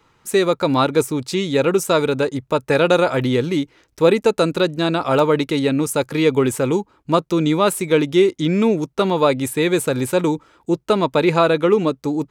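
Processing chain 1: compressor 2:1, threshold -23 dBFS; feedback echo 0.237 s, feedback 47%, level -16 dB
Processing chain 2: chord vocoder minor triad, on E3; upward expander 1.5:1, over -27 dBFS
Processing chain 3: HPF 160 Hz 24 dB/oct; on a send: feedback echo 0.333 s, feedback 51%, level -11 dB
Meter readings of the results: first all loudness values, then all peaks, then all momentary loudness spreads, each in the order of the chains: -23.5, -22.0, -18.0 LUFS; -9.5, -3.5, -1.5 dBFS; 4, 7, 6 LU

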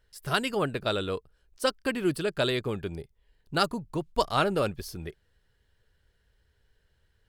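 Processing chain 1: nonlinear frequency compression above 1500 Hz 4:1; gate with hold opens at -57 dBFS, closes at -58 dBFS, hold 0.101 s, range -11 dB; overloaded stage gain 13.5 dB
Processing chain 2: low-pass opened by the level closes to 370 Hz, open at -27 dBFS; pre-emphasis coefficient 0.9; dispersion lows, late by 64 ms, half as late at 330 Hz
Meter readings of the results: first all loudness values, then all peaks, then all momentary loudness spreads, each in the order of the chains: -29.0, -40.5 LUFS; -13.5, -18.0 dBFS; 11, 14 LU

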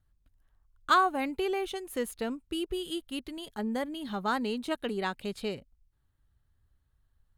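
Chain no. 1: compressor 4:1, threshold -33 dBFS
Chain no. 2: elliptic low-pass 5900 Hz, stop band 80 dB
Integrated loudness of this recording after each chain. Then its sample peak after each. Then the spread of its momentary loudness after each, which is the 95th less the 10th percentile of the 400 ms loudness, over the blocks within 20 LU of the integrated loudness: -37.5, -33.0 LUFS; -20.5, -12.0 dBFS; 5, 12 LU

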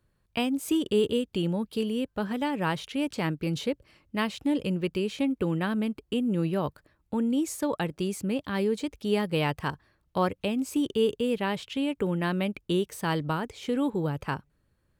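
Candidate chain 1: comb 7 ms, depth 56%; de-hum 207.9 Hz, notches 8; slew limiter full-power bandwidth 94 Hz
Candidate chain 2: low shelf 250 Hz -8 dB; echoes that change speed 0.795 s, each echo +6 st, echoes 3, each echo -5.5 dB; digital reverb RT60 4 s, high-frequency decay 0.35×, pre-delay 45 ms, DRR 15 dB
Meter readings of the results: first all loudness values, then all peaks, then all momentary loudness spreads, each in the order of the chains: -28.0, -30.5 LUFS; -12.0, -13.0 dBFS; 8, 5 LU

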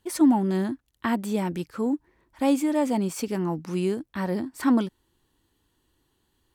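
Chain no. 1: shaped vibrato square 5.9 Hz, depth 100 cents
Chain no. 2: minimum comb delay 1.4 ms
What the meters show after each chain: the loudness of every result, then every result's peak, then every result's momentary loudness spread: -26.0, -29.0 LUFS; -10.0, -12.5 dBFS; 9, 8 LU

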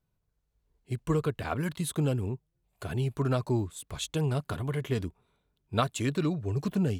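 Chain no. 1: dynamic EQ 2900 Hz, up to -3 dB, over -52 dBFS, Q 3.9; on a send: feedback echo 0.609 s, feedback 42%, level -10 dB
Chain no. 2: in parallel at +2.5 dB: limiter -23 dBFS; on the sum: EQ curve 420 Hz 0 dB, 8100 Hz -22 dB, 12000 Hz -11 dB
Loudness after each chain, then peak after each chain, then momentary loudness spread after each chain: -31.0, -25.5 LUFS; -12.5, -12.5 dBFS; 9, 8 LU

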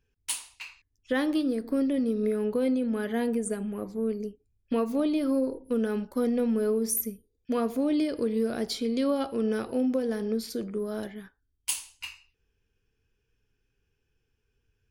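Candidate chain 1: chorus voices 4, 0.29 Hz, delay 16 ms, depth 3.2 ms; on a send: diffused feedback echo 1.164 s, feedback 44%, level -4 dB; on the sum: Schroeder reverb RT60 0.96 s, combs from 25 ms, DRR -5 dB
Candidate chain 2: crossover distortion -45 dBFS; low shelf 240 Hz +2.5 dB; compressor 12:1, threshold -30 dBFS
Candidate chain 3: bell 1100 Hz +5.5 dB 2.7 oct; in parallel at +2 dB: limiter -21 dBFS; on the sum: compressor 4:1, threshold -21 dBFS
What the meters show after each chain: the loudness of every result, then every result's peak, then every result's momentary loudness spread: -24.5, -35.5, -25.5 LUFS; -9.5, -15.5, -9.5 dBFS; 17, 7, 8 LU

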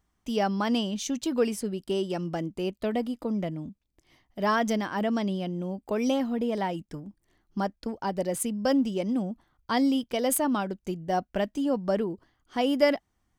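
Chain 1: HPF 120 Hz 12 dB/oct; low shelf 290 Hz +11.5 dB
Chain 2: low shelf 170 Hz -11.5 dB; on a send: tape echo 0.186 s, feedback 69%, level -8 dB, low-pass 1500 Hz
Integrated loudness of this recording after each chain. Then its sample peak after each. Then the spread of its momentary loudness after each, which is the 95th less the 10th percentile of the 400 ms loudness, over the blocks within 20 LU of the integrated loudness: -24.0, -30.0 LUFS; -7.0, -10.0 dBFS; 9, 11 LU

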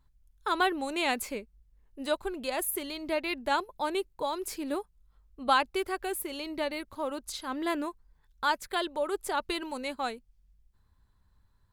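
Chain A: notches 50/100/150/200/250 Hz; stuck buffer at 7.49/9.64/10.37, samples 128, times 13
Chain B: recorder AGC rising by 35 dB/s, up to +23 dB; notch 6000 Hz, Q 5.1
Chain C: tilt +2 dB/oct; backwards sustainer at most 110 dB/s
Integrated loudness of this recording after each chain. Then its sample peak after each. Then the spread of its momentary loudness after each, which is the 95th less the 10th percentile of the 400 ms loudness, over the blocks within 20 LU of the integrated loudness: -32.0, -27.5, -30.5 LUFS; -11.0, -3.0, -10.0 dBFS; 9, 5, 10 LU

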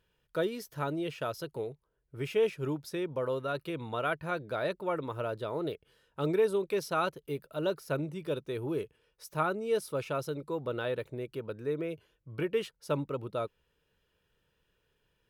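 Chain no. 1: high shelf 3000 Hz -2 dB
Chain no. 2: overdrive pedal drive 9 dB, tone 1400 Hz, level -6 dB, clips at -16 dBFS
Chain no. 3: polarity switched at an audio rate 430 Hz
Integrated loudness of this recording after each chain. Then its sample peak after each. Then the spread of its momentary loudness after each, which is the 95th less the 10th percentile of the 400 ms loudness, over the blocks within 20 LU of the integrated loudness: -34.5, -34.5, -34.0 LUFS; -16.5, -18.0, -16.5 dBFS; 10, 10, 10 LU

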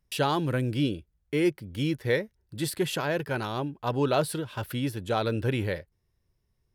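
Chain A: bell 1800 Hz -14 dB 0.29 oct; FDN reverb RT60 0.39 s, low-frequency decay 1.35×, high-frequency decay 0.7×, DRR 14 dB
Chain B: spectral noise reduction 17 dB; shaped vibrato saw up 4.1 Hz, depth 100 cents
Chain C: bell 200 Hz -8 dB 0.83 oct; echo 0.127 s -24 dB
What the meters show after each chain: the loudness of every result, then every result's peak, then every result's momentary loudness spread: -29.0, -31.5, -30.5 LUFS; -11.0, -13.0, -13.0 dBFS; 7, 11, 8 LU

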